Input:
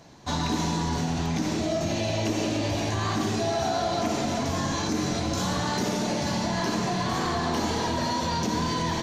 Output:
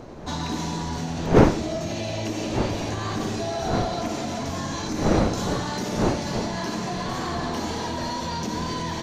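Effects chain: wind noise 490 Hz -26 dBFS; trim -2 dB

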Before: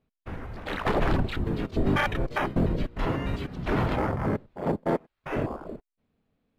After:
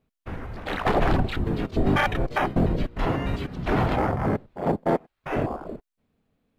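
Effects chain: dynamic bell 740 Hz, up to +6 dB, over -48 dBFS, Q 6.3; trim +2.5 dB

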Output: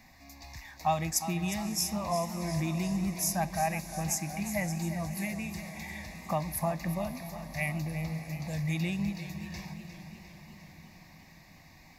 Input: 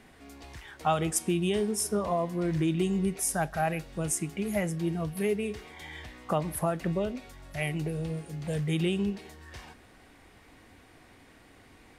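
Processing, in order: treble shelf 5.1 kHz +12 dB; static phaser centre 2.1 kHz, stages 8; echo that smears into a reverb 583 ms, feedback 62%, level -16 dB; modulated delay 355 ms, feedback 60%, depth 54 cents, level -11.5 dB

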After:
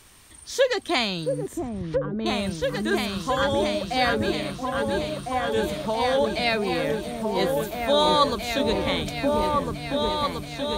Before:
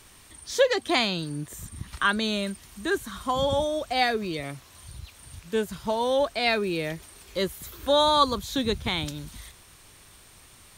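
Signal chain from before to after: delay with an opening low-pass 677 ms, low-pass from 400 Hz, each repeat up 2 oct, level 0 dB; 1.47–2.26 s: low-pass that closes with the level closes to 340 Hz, closed at -17 dBFS

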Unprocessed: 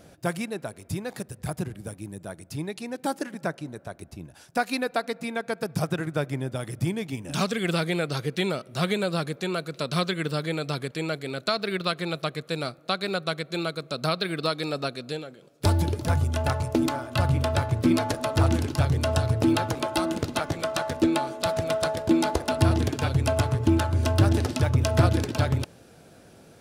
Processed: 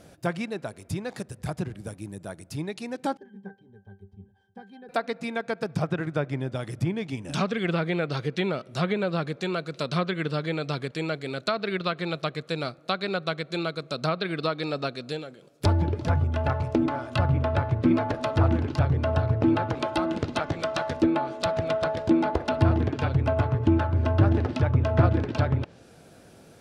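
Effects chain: 3.17–4.89 s: pitch-class resonator G, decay 0.17 s; low-pass that closes with the level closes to 2 kHz, closed at -20.5 dBFS

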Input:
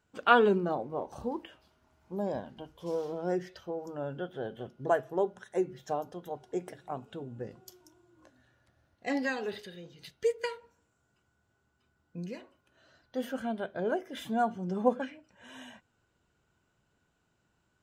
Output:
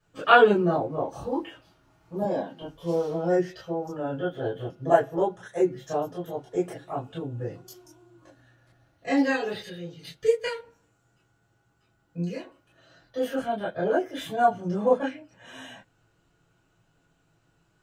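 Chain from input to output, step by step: 2.22–2.62 s: high-pass 180 Hz 24 dB/octave; reverberation, pre-delay 3 ms, DRR -8.5 dB; trim -9 dB

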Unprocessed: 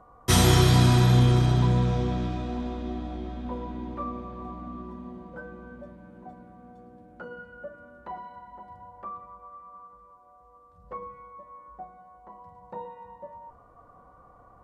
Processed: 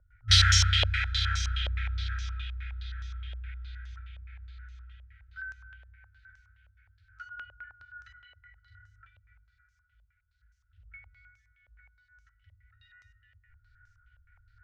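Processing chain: FFT band-reject 110–1300 Hz; vibrato 9.1 Hz 6.5 cents; step-sequenced low-pass 9.6 Hz 580–6000 Hz

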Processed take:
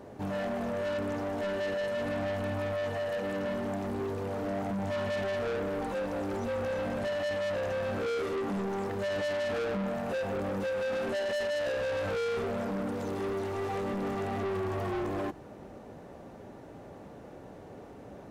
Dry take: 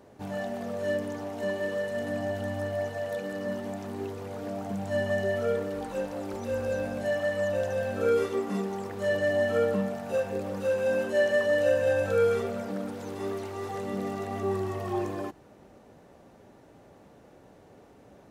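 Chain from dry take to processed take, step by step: treble shelf 2.5 kHz -6.5 dB; in parallel at +2 dB: peak limiter -26 dBFS, peak gain reduction 10.5 dB; on the sum: saturation -30 dBFS, distortion -7 dB

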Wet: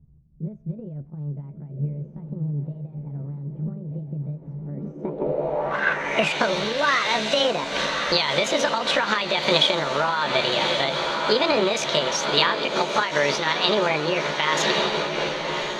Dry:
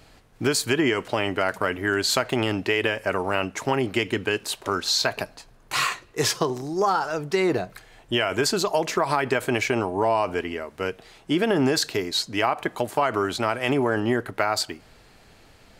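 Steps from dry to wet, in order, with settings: rotating-head pitch shifter +6.5 st; level rider gain up to 9.5 dB; on a send: echo that smears into a reverb 1182 ms, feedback 70%, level -8 dB; on the sum: compression, threshold -17 dBFS, peak gain reduction 7 dB; low-pass sweep 140 Hz -> 3.9 kHz, 4.59–6.47 s; random flutter of the level, depth 65%; trim +2.5 dB

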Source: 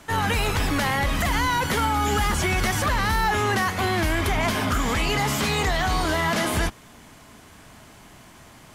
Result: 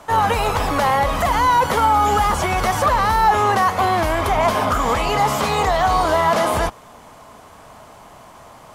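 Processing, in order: high-order bell 760 Hz +10 dB

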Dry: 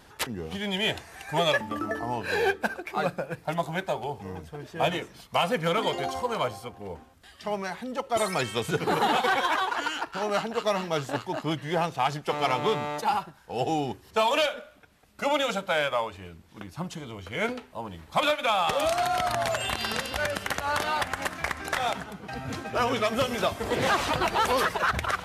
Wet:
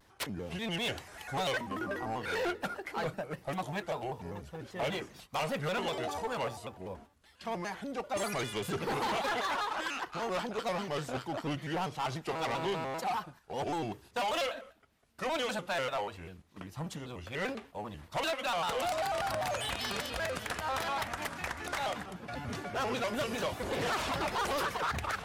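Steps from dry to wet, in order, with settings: gate -48 dBFS, range -7 dB; saturation -25 dBFS, distortion -11 dB; vibrato with a chosen wave square 5.1 Hz, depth 160 cents; trim -3.5 dB

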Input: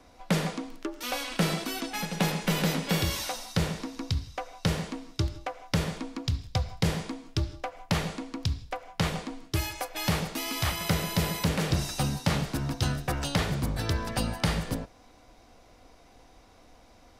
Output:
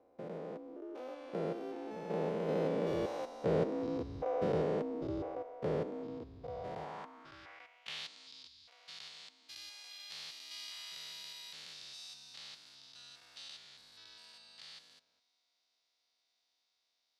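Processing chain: spectrogram pixelated in time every 200 ms; Doppler pass-by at 4.28 s, 11 m/s, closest 8.6 m; band-pass sweep 460 Hz -> 4.2 kHz, 6.44–8.12 s; trim +13 dB

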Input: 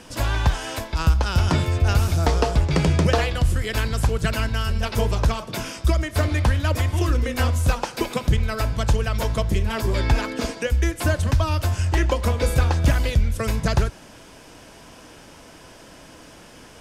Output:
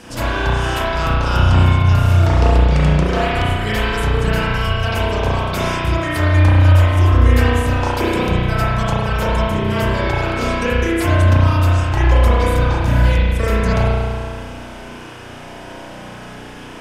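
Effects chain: peaking EQ 65 Hz -4.5 dB 0.27 oct; compression, threshold -23 dBFS, peak gain reduction 10 dB; spring tank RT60 1.9 s, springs 33 ms, chirp 80 ms, DRR -9 dB; trim +2.5 dB

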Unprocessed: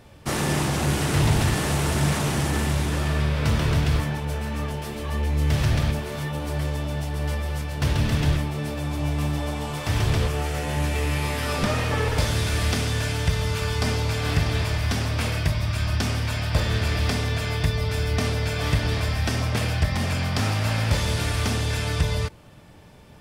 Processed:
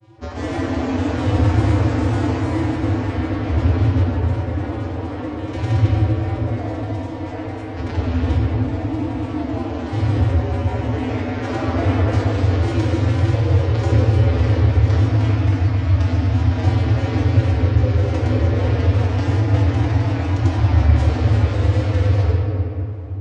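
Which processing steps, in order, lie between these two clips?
vocoder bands 16, square 94.7 Hz; granulator, pitch spread up and down by 3 st; reverberation RT60 3.2 s, pre-delay 6 ms, DRR -3.5 dB; trim +5 dB

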